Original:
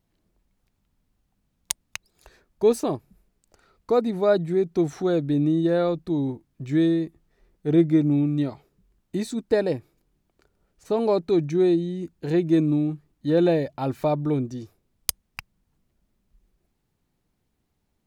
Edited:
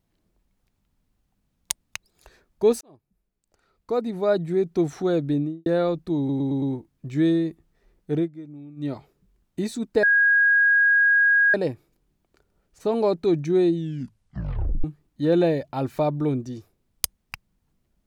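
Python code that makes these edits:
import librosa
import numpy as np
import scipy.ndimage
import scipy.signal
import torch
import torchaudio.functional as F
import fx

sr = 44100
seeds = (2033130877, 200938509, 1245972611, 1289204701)

y = fx.studio_fade_out(x, sr, start_s=5.28, length_s=0.38)
y = fx.edit(y, sr, fx.fade_in_span(start_s=2.81, length_s=1.82),
    fx.stutter(start_s=6.18, slice_s=0.11, count=5),
    fx.fade_down_up(start_s=7.68, length_s=0.81, db=-20.0, fade_s=0.17),
    fx.insert_tone(at_s=9.59, length_s=1.51, hz=1640.0, db=-14.5),
    fx.tape_stop(start_s=11.79, length_s=1.1), tone=tone)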